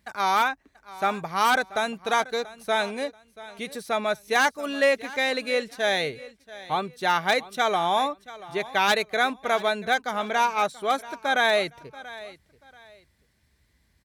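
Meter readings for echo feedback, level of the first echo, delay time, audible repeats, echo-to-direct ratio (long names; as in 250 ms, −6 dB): 27%, −18.0 dB, 684 ms, 2, −17.5 dB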